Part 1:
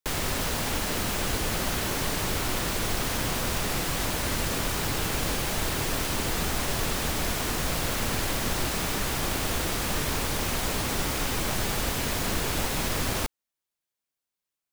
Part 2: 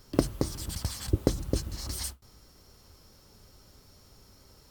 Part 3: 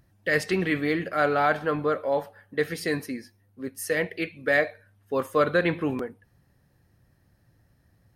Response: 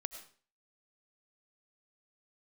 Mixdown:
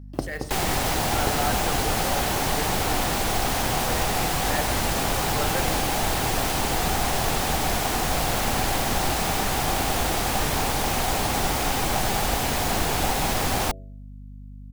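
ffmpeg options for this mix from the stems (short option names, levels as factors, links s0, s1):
-filter_complex "[0:a]adelay=450,volume=1.41[s0];[1:a]agate=range=0.0224:threshold=0.00708:ratio=3:detection=peak,volume=0.596[s1];[2:a]bandreject=f=50.08:t=h:w=4,bandreject=f=100.16:t=h:w=4,bandreject=f=150.24:t=h:w=4,bandreject=f=200.32:t=h:w=4,bandreject=f=250.4:t=h:w=4,bandreject=f=300.48:t=h:w=4,bandreject=f=350.56:t=h:w=4,bandreject=f=400.64:t=h:w=4,bandreject=f=450.72:t=h:w=4,bandreject=f=500.8:t=h:w=4,bandreject=f=550.88:t=h:w=4,bandreject=f=600.96:t=h:w=4,bandreject=f=651.04:t=h:w=4,bandreject=f=701.12:t=h:w=4,bandreject=f=751.2:t=h:w=4,bandreject=f=801.28:t=h:w=4,bandreject=f=851.36:t=h:w=4,bandreject=f=901.44:t=h:w=4,bandreject=f=951.52:t=h:w=4,bandreject=f=1001.6:t=h:w=4,bandreject=f=1051.68:t=h:w=4,bandreject=f=1101.76:t=h:w=4,bandreject=f=1151.84:t=h:w=4,bandreject=f=1201.92:t=h:w=4,bandreject=f=1252:t=h:w=4,bandreject=f=1302.08:t=h:w=4,bandreject=f=1352.16:t=h:w=4,bandreject=f=1402.24:t=h:w=4,bandreject=f=1452.32:t=h:w=4,bandreject=f=1502.4:t=h:w=4,acrusher=bits=4:mode=log:mix=0:aa=0.000001,volume=0.299[s2];[s0][s1][s2]amix=inputs=3:normalize=0,equalizer=f=770:t=o:w=0.41:g=10,bandreject=f=94.72:t=h:w=4,bandreject=f=189.44:t=h:w=4,bandreject=f=284.16:t=h:w=4,bandreject=f=378.88:t=h:w=4,bandreject=f=473.6:t=h:w=4,bandreject=f=568.32:t=h:w=4,bandreject=f=663.04:t=h:w=4,aeval=exprs='val(0)+0.0112*(sin(2*PI*50*n/s)+sin(2*PI*2*50*n/s)/2+sin(2*PI*3*50*n/s)/3+sin(2*PI*4*50*n/s)/4+sin(2*PI*5*50*n/s)/5)':c=same"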